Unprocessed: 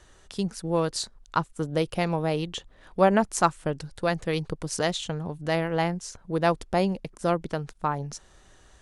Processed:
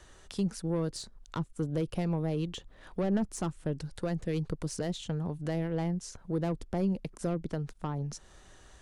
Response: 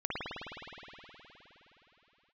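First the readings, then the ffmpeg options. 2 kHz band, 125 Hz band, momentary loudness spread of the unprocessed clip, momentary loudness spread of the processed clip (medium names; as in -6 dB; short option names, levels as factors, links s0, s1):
-14.5 dB, -1.5 dB, 10 LU, 7 LU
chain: -filter_complex "[0:a]asoftclip=type=tanh:threshold=0.106,acrossover=split=390[s0][s1];[s1]acompressor=threshold=0.00794:ratio=3[s2];[s0][s2]amix=inputs=2:normalize=0"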